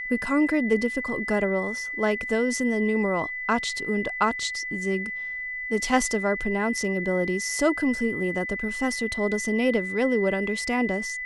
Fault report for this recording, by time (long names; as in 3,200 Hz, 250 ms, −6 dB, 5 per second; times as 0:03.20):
whistle 2,000 Hz −30 dBFS